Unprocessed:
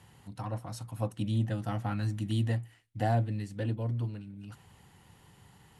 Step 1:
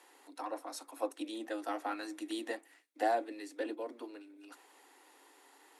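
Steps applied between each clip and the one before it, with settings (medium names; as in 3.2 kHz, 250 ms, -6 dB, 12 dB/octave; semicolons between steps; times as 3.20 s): steep high-pass 270 Hz 96 dB/octave; band-stop 3 kHz, Q 10; trim +1 dB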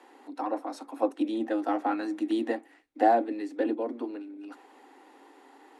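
RIAA curve playback; small resonant body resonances 230/790 Hz, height 6 dB; trim +6 dB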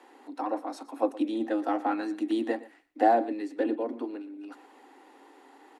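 delay 117 ms -18.5 dB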